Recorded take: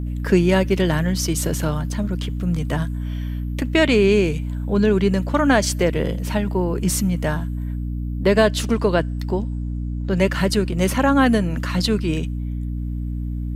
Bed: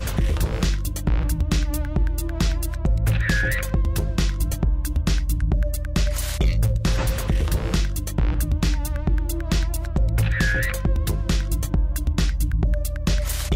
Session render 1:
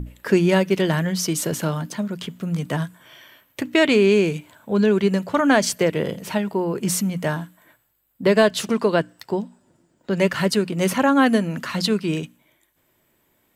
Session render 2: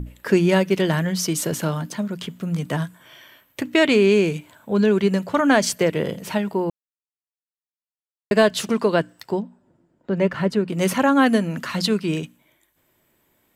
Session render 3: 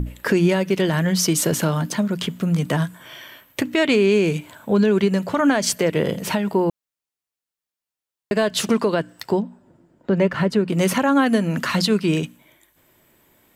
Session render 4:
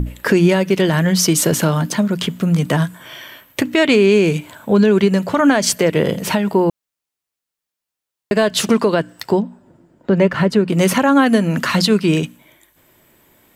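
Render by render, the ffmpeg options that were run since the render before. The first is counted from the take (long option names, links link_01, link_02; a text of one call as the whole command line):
ffmpeg -i in.wav -af "bandreject=frequency=60:width_type=h:width=6,bandreject=frequency=120:width_type=h:width=6,bandreject=frequency=180:width_type=h:width=6,bandreject=frequency=240:width_type=h:width=6,bandreject=frequency=300:width_type=h:width=6" out.wav
ffmpeg -i in.wav -filter_complex "[0:a]asplit=3[link_01][link_02][link_03];[link_01]afade=type=out:start_time=9.39:duration=0.02[link_04];[link_02]lowpass=frequency=1200:poles=1,afade=type=in:start_time=9.39:duration=0.02,afade=type=out:start_time=10.68:duration=0.02[link_05];[link_03]afade=type=in:start_time=10.68:duration=0.02[link_06];[link_04][link_05][link_06]amix=inputs=3:normalize=0,asplit=3[link_07][link_08][link_09];[link_07]atrim=end=6.7,asetpts=PTS-STARTPTS,afade=type=out:start_time=6.696:duration=0.004:curve=hsin[link_10];[link_08]atrim=start=6.7:end=8.31,asetpts=PTS-STARTPTS,volume=0[link_11];[link_09]atrim=start=8.31,asetpts=PTS-STARTPTS,afade=type=in:duration=0.004:curve=hsin[link_12];[link_10][link_11][link_12]concat=n=3:v=0:a=1" out.wav
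ffmpeg -i in.wav -filter_complex "[0:a]asplit=2[link_01][link_02];[link_02]acompressor=threshold=-26dB:ratio=6,volume=1.5dB[link_03];[link_01][link_03]amix=inputs=2:normalize=0,alimiter=limit=-8.5dB:level=0:latency=1:release=109" out.wav
ffmpeg -i in.wav -af "volume=4.5dB" out.wav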